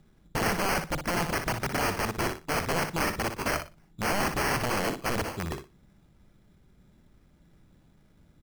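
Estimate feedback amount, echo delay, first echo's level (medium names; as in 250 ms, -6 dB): 19%, 60 ms, -8.0 dB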